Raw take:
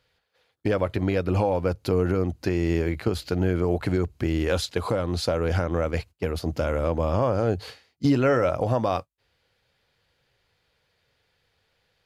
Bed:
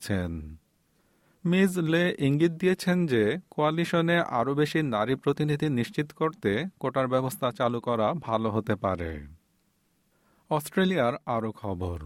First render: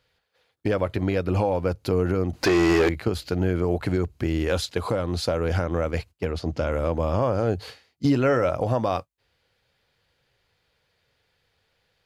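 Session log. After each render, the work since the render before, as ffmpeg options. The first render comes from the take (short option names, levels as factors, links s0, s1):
-filter_complex "[0:a]asettb=1/sr,asplit=3[s0][s1][s2];[s0]atrim=end=2.334[s3];[s1]atrim=start=2.33:end=2.89,asetpts=PTS-STARTPTS,afade=t=in:d=0.004:c=qsin,afade=t=out:st=0.556:d=0.004:c=qsin,asplit=2[s4][s5];[s5]highpass=f=720:p=1,volume=20,asoftclip=type=tanh:threshold=0.299[s6];[s4][s6]amix=inputs=2:normalize=0,lowpass=f=4200:p=1,volume=0.501[s7];[s2]atrim=start=2.886[s8];[s3][s7]acrossfade=d=0.004:c1=hsin:c2=qsin[s9];[s9][s8]acrossfade=d=0.004:c1=qsin:c2=hsin,asettb=1/sr,asplit=3[s10][s11][s12];[s10]atrim=end=6.254[s13];[s11]atrim=start=6.25:end=6.72,asetpts=PTS-STARTPTS,afade=t=in:d=0.004:c=qsin,afade=t=out:st=0.466:d=0.004:c=qsin,lowpass=6600[s14];[s12]atrim=start=6.716[s15];[s13][s14]acrossfade=d=0.004:c1=hsin:c2=qsin[s16];[s16][s15]acrossfade=d=0.004:c1=qsin:c2=hsin"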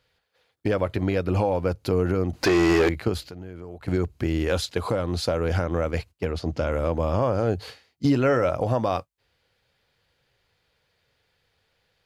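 -filter_complex "[0:a]asettb=1/sr,asplit=3[s0][s1][s2];[s0]atrim=end=3.234[s3];[s1]atrim=start=3.23:end=3.88,asetpts=PTS-STARTPTS,afade=t=in:d=0.004:c=qsin,afade=t=out:st=0.646:d=0.004:c=qsin,acompressor=threshold=0.00447:ratio=2:attack=3.2:release=140:knee=1:detection=peak[s4];[s2]atrim=start=3.876[s5];[s3][s4]acrossfade=d=0.004:c1=hsin:c2=qsin[s6];[s6][s5]acrossfade=d=0.004:c1=qsin:c2=hsin"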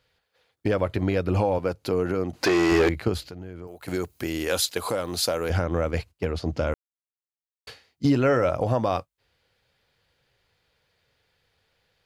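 -filter_complex "[0:a]asettb=1/sr,asplit=3[s0][s1][s2];[s0]atrim=end=1.584[s3];[s1]atrim=start=1.58:end=2.72,asetpts=PTS-STARTPTS,afade=t=in:d=0.004:c=qsin,afade=t=out:st=1.136:d=0.004:c=qsin,highpass=f=210:p=1[s4];[s2]atrim=start=2.716[s5];[s3][s4]acrossfade=d=0.004:c1=hsin:c2=qsin[s6];[s6][s5]acrossfade=d=0.004:c1=qsin:c2=hsin,asettb=1/sr,asplit=3[s7][s8][s9];[s7]atrim=end=3.674[s10];[s8]atrim=start=3.67:end=5.5,asetpts=PTS-STARTPTS,afade=t=in:d=0.004:c=qsin,afade=t=out:st=1.826:d=0.004:c=qsin,aemphasis=mode=production:type=bsi[s11];[s9]atrim=start=5.496[s12];[s10][s11]acrossfade=d=0.004:c1=hsin:c2=qsin[s13];[s13][s12]acrossfade=d=0.004:c1=qsin:c2=hsin,asplit=3[s14][s15][s16];[s14]atrim=end=6.74,asetpts=PTS-STARTPTS,afade=t=out:st=6.736:d=0.004:c=hsin[s17];[s15]atrim=start=6.74:end=7.67,asetpts=PTS-STARTPTS,volume=0[s18];[s16]atrim=start=7.67,asetpts=PTS-STARTPTS,afade=t=in:d=0.004:c=hsin[s19];[s17][s18][s19]concat=n=3:v=0:a=1"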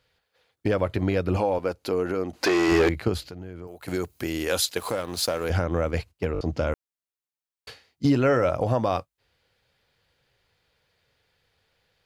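-filter_complex "[0:a]asettb=1/sr,asplit=3[s0][s1][s2];[s0]atrim=end=1.364[s3];[s1]atrim=start=1.36:end=2.68,asetpts=PTS-STARTPTS,afade=t=in:d=0.004:c=qsin,afade=t=out:st=1.316:d=0.004:c=qsin,equalizer=f=120:w=1.4:g=-10[s4];[s2]atrim=start=2.676[s5];[s3][s4]acrossfade=d=0.004:c1=hsin:c2=qsin[s6];[s6][s5]acrossfade=d=0.004:c1=qsin:c2=hsin,asettb=1/sr,asplit=3[s7][s8][s9];[s7]atrim=end=4.794[s10];[s8]atrim=start=4.79:end=5.44,asetpts=PTS-STARTPTS,afade=t=in:d=0.004:c=qsin,afade=t=out:st=0.646:d=0.004:c=qsin,aeval=exprs='sgn(val(0))*max(abs(val(0))-0.00891,0)':c=same[s11];[s9]atrim=start=5.436[s12];[s10][s11]acrossfade=d=0.004:c1=hsin:c2=qsin[s13];[s13][s12]acrossfade=d=0.004:c1=qsin:c2=hsin,asplit=5[s14][s15][s16][s17][s18];[s14]atrim=end=6.352[s19];[s15]atrim=start=6.328:end=6.352[s20];[s16]atrim=start=6.328:end=6.352[s21];[s17]atrim=start=6.328:end=6.352[s22];[s18]atrim=start=6.408[s23];[s19][s20]acrossfade=d=0.004:c1=hsin:c2=hsin[s24];[s24][s21]acrossfade=d=0.004:c1=hsin:c2=hsin[s25];[s25][s22]acrossfade=d=0.004:c1=hsin:c2=hsin[s26];[s26][s23]acrossfade=d=0.004:c1=hsin:c2=hsin"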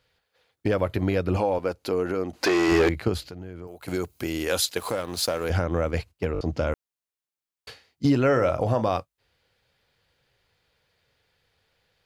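-filter_complex "[0:a]asettb=1/sr,asplit=3[s0][s1][s2];[s0]atrim=end=0.724[s3];[s1]atrim=start=0.72:end=1.17,asetpts=PTS-STARTPTS,afade=t=in:d=0.004:c=qsin,afade=t=out:st=0.446:d=0.004:c=qsin,equalizer=f=12000:w=3.3:g=9[s4];[s2]atrim=start=1.166[s5];[s3][s4]acrossfade=d=0.004:c1=hsin:c2=qsin[s6];[s6][s5]acrossfade=d=0.004:c1=qsin:c2=hsin,asettb=1/sr,asplit=3[s7][s8][s9];[s7]atrim=end=3.724[s10];[s8]atrim=start=3.72:end=4.43,asetpts=PTS-STARTPTS,afade=t=in:d=0.004:c=qsin,afade=t=out:st=0.706:d=0.004:c=qsin,bandreject=f=1800:w=12[s11];[s9]atrim=start=4.426[s12];[s10][s11]acrossfade=d=0.004:c1=hsin:c2=qsin[s13];[s13][s12]acrossfade=d=0.004:c1=qsin:c2=hsin,asettb=1/sr,asplit=3[s14][s15][s16];[s14]atrim=end=8.324[s17];[s15]atrim=start=8.32:end=8.89,asetpts=PTS-STARTPTS,afade=t=in:d=0.004:c=qsin,afade=t=out:st=0.566:d=0.004:c=qsin,asplit=2[s18][s19];[s19]adelay=37,volume=0.237[s20];[s18][s20]amix=inputs=2:normalize=0,atrim=end_sample=25137[s21];[s16]atrim=start=8.886[s22];[s17][s21]acrossfade=d=0.004:c1=hsin:c2=qsin[s23];[s23][s22]acrossfade=d=0.004:c1=qsin:c2=hsin"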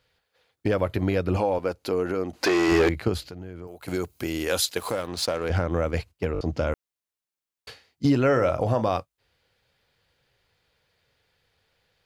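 -filter_complex "[0:a]asettb=1/sr,asplit=3[s0][s1][s2];[s0]atrim=end=5.074[s3];[s1]atrim=start=5.07:end=5.67,asetpts=PTS-STARTPTS,afade=t=in:d=0.004:c=qsin,afade=t=out:st=0.596:d=0.004:c=qsin,adynamicsmooth=sensitivity=8:basefreq=4000[s4];[s2]atrim=start=5.666[s5];[s3][s4]acrossfade=d=0.004:c1=hsin:c2=qsin[s6];[s6][s5]acrossfade=d=0.004:c1=qsin:c2=hsin"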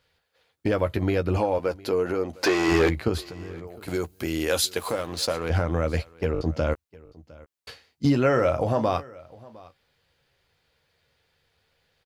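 -filter_complex "[0:a]asplit=2[s0][s1];[s1]adelay=13,volume=0.335[s2];[s0][s2]amix=inputs=2:normalize=0,aecho=1:1:708:0.075"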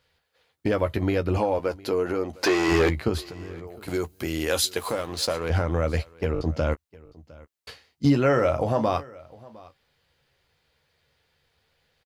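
-filter_complex "[0:a]asplit=2[s0][s1];[s1]adelay=14,volume=0.211[s2];[s0][s2]amix=inputs=2:normalize=0"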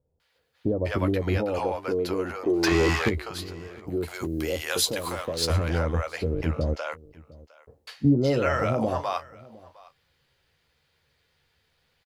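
-filter_complex "[0:a]acrossover=split=620[s0][s1];[s1]adelay=200[s2];[s0][s2]amix=inputs=2:normalize=0"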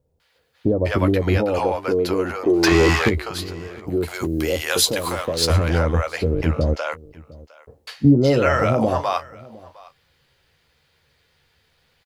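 -af "volume=2.11,alimiter=limit=0.708:level=0:latency=1"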